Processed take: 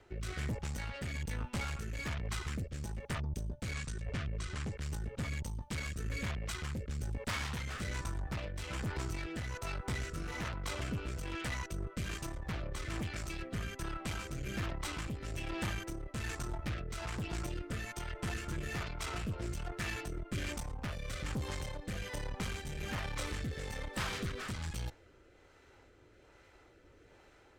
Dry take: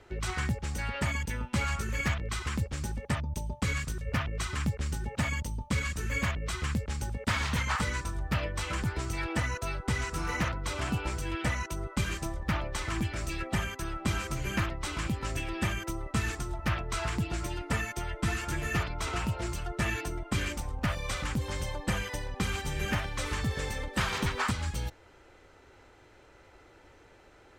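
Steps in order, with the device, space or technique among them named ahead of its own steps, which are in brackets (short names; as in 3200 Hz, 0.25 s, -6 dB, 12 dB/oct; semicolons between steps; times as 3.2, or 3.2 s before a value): overdriven rotary cabinet (tube stage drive 33 dB, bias 0.65; rotary speaker horn 1.2 Hz); 3.74–4.78 LPF 9500 Hz 24 dB/oct; gain +1 dB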